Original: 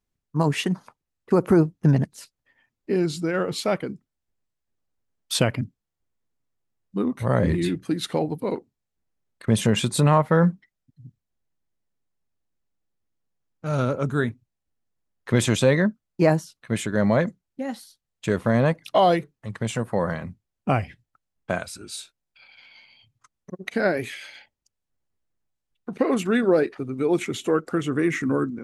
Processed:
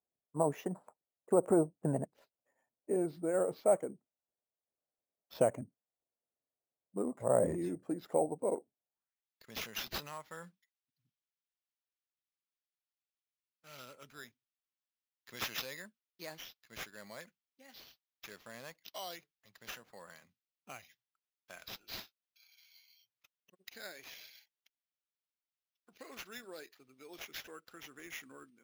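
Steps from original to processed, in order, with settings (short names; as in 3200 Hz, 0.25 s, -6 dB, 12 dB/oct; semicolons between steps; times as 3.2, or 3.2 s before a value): band-pass sweep 630 Hz -> 5600 Hz, 8.87–9.37; low shelf 400 Hz +5.5 dB; sample-and-hold 5×; gain -3.5 dB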